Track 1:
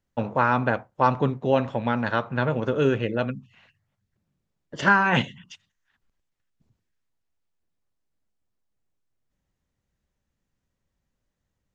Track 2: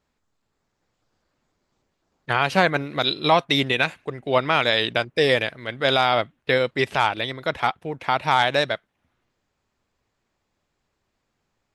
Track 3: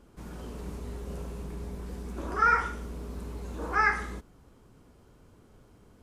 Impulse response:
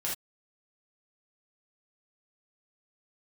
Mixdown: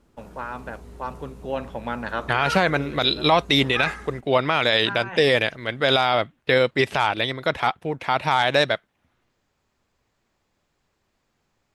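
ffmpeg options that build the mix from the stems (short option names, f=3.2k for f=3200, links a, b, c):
-filter_complex "[0:a]lowshelf=f=170:g=-11.5,volume=-2.5dB,afade=t=in:st=1.19:d=0.67:silence=0.375837[a];[1:a]volume=3dB,asplit=2[b][c];[2:a]volume=-4.5dB[d];[c]apad=whole_len=518095[e];[a][e]sidechaincompress=threshold=-23dB:ratio=8:attack=41:release=1420[f];[f][b][d]amix=inputs=3:normalize=0,alimiter=limit=-7dB:level=0:latency=1:release=17"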